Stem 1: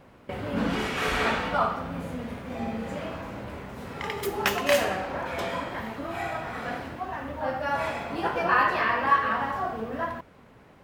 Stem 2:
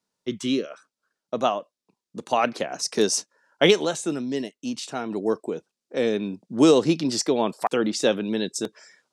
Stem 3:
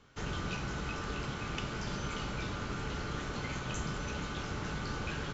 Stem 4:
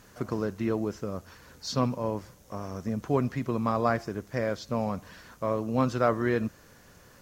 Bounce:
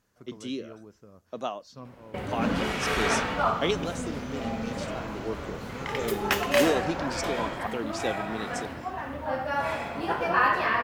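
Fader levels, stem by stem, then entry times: -0.5 dB, -10.0 dB, -5.0 dB, -18.0 dB; 1.85 s, 0.00 s, 2.25 s, 0.00 s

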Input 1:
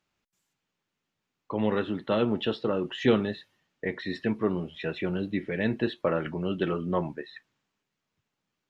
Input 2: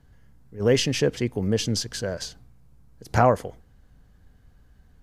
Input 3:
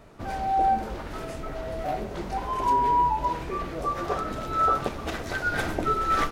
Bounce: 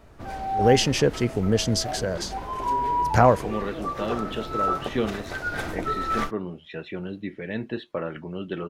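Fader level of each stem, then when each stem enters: -3.5 dB, +1.5 dB, -2.5 dB; 1.90 s, 0.00 s, 0.00 s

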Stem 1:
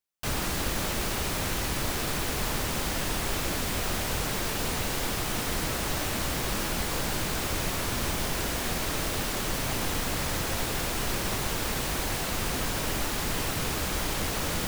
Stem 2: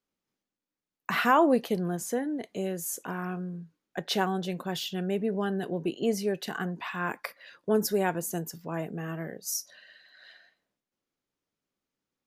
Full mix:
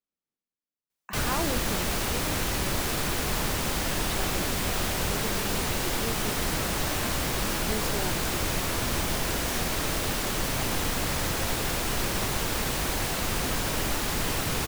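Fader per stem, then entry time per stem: +1.5 dB, -10.5 dB; 0.90 s, 0.00 s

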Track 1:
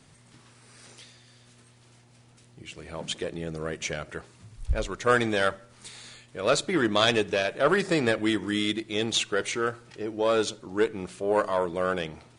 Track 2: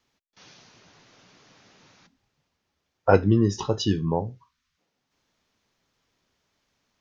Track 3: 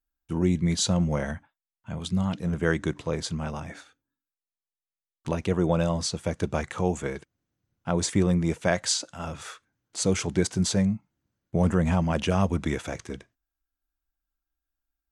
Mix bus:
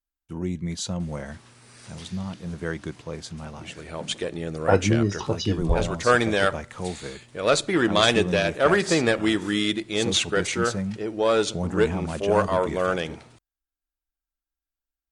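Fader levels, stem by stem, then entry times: +3.0 dB, -1.5 dB, -5.5 dB; 1.00 s, 1.60 s, 0.00 s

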